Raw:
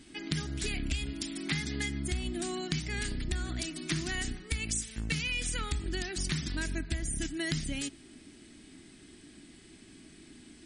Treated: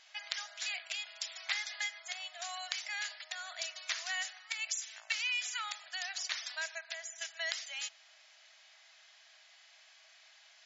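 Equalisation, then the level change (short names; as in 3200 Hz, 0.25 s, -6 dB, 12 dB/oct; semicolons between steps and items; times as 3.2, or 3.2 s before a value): brick-wall FIR band-pass 580–7400 Hz; 0.0 dB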